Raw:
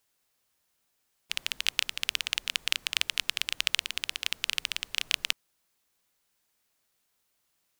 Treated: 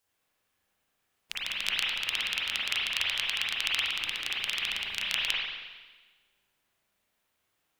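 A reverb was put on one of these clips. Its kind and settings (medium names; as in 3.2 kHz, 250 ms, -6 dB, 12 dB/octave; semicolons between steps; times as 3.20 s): spring tank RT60 1.3 s, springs 35/45 ms, chirp 80 ms, DRR -7 dB; trim -5 dB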